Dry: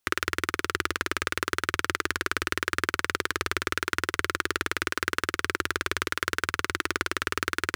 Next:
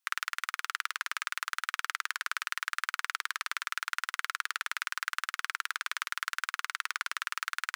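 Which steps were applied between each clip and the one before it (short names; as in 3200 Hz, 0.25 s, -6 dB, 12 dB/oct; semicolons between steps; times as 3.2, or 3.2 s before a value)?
HPF 880 Hz 24 dB/oct; gain -5 dB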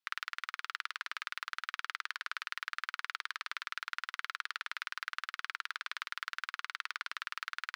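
resonant high shelf 5800 Hz -8 dB, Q 1.5; gain -6 dB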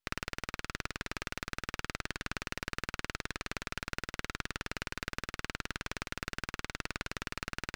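half-wave rectifier; gain +4.5 dB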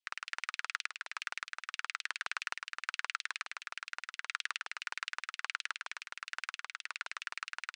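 LFO high-pass saw down 7.5 Hz 810–3300 Hz; random-step tremolo; downsampling 22050 Hz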